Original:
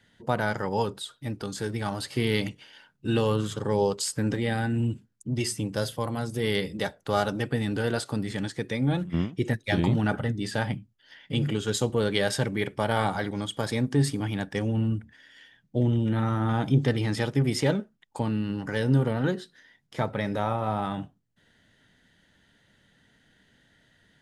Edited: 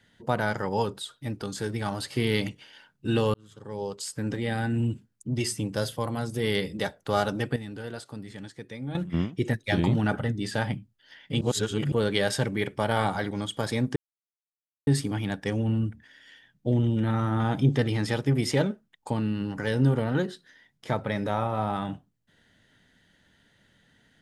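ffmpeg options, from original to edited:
-filter_complex "[0:a]asplit=7[s0][s1][s2][s3][s4][s5][s6];[s0]atrim=end=3.34,asetpts=PTS-STARTPTS,afade=t=out:st=3.336:d=0.004:c=hsin[s7];[s1]atrim=start=3.34:end=7.562,asetpts=PTS-STARTPTS,afade=t=in:d=1.4[s8];[s2]atrim=start=7.558:end=8.952,asetpts=PTS-STARTPTS,volume=0.316[s9];[s3]atrim=start=8.948:end=11.412[s10];[s4]atrim=start=11.408:end=11.922,asetpts=PTS-STARTPTS,areverse[s11];[s5]atrim=start=11.918:end=13.96,asetpts=PTS-STARTPTS,afade=t=out:st=2.038:d=0.004:c=hsin,apad=pad_dur=0.91[s12];[s6]atrim=start=13.96,asetpts=PTS-STARTPTS,afade=t=in:d=0.004:c=hsin[s13];[s7][s8]concat=n=2:v=0:a=1[s14];[s14][s9]acrossfade=d=0.004:c1=hsin:c2=hsin[s15];[s15][s10]acrossfade=d=0.004:c1=hsin:c2=hsin[s16];[s16][s11]acrossfade=d=0.004:c1=hsin:c2=hsin[s17];[s12][s13]concat=n=2:v=0:a=1[s18];[s17][s18]acrossfade=d=0.004:c1=hsin:c2=hsin"

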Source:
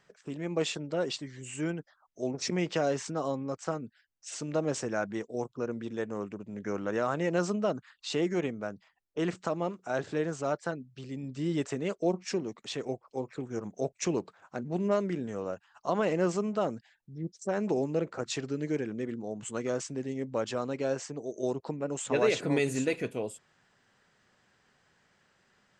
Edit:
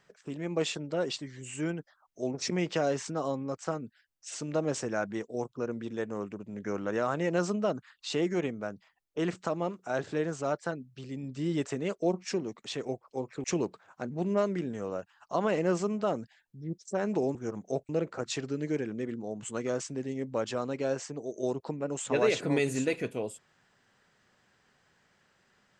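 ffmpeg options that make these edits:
-filter_complex "[0:a]asplit=4[s0][s1][s2][s3];[s0]atrim=end=13.442[s4];[s1]atrim=start=13.978:end=17.892[s5];[s2]atrim=start=13.438:end=13.982[s6];[s3]atrim=start=17.888[s7];[s4][s5]acrossfade=d=0.004:c1=hsin:c2=hsin[s8];[s8][s6]acrossfade=d=0.004:c1=hsin:c2=hsin[s9];[s9][s7]acrossfade=d=0.004:c1=hsin:c2=hsin"

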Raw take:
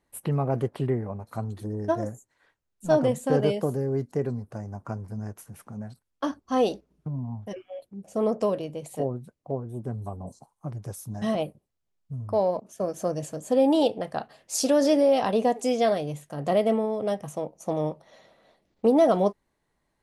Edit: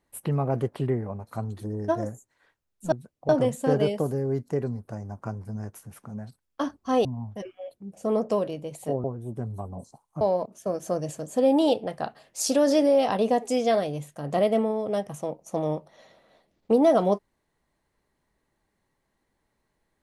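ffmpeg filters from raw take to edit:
-filter_complex "[0:a]asplit=6[s0][s1][s2][s3][s4][s5];[s0]atrim=end=2.922[s6];[s1]atrim=start=9.148:end=9.522[s7];[s2]atrim=start=2.918:end=6.682[s8];[s3]atrim=start=7.158:end=9.152[s9];[s4]atrim=start=9.518:end=10.692[s10];[s5]atrim=start=12.348[s11];[s6][s7]acrossfade=d=0.004:c1=hsin:c2=hsin[s12];[s12][s8]acrossfade=d=0.004:c1=hsin:c2=hsin[s13];[s13][s9]acrossfade=d=0.004:c1=hsin:c2=hsin[s14];[s14][s10]acrossfade=d=0.004:c1=hsin:c2=hsin[s15];[s15][s11]acrossfade=d=0.004:c1=hsin:c2=hsin"

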